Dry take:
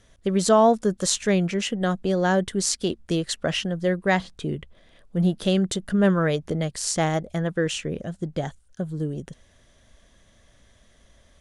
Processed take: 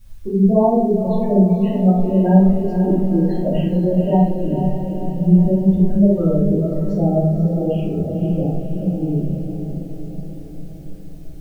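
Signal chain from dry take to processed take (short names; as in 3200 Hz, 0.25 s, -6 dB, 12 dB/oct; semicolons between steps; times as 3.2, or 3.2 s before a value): LPF 1300 Hz 12 dB/oct; spectral gate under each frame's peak -10 dB strong; low shelf 220 Hz +8 dB; in parallel at +0.5 dB: compressor, threshold -28 dBFS, peak gain reduction 15 dB; on the sum: added noise white -59 dBFS; flange 0.86 Hz, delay 0.3 ms, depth 4.9 ms, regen -63%; on a send: diffused feedback echo 0.511 s, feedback 59%, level -7 dB; on the sum: shoebox room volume 140 m³, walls mixed, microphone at 2.8 m; gain -6 dB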